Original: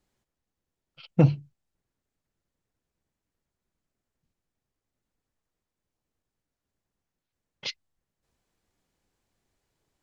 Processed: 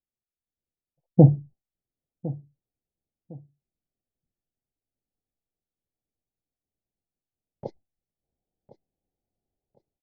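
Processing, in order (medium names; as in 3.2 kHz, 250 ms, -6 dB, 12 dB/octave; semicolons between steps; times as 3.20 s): elliptic low-pass 790 Hz, stop band 40 dB; gate with hold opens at -49 dBFS; level rider gain up to 15 dB; on a send: feedback delay 1057 ms, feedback 27%, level -18 dB; on the sum: trim -1 dB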